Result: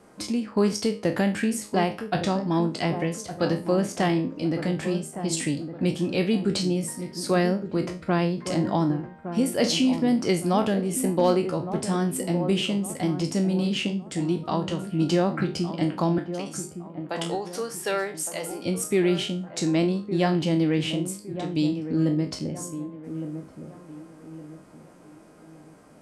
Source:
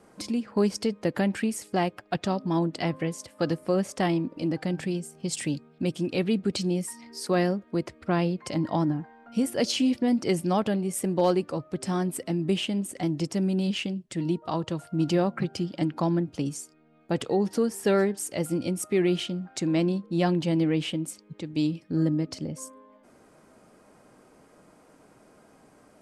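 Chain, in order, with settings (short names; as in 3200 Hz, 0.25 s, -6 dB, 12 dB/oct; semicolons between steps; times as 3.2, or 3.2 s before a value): spectral trails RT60 0.31 s; 16.18–18.65 HPF 620 Hz 12 dB/oct; dark delay 1.162 s, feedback 37%, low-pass 1200 Hz, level -10 dB; gain +1.5 dB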